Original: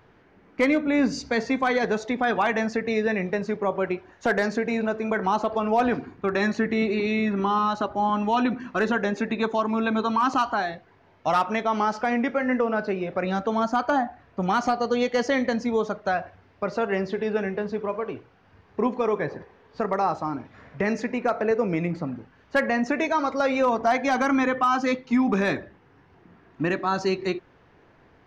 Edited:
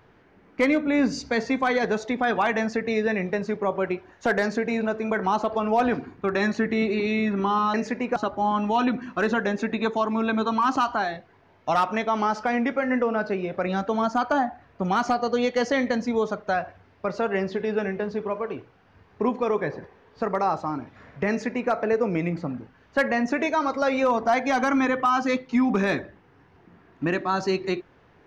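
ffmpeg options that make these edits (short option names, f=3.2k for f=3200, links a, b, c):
-filter_complex "[0:a]asplit=3[a][b][c];[a]atrim=end=7.742[d];[b]atrim=start=20.868:end=21.292[e];[c]atrim=start=7.738[f];[d][e]acrossfade=d=0.004:c1=hsin:c2=hsin[g];[g][f]acrossfade=d=0.004:c1=hsin:c2=hsin"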